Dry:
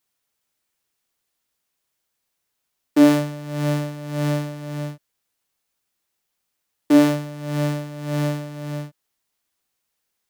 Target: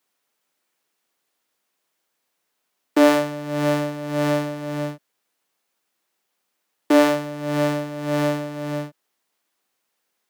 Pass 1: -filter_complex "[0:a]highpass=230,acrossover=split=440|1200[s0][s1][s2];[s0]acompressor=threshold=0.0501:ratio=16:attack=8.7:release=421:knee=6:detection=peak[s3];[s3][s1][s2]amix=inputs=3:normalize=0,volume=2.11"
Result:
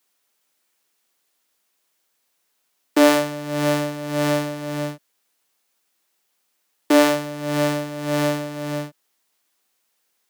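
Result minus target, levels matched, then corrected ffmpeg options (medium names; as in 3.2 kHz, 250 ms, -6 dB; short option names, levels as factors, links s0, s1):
8 kHz band +5.0 dB
-filter_complex "[0:a]highpass=230,highshelf=f=2900:g=-6.5,acrossover=split=440|1200[s0][s1][s2];[s0]acompressor=threshold=0.0501:ratio=16:attack=8.7:release=421:knee=6:detection=peak[s3];[s3][s1][s2]amix=inputs=3:normalize=0,volume=2.11"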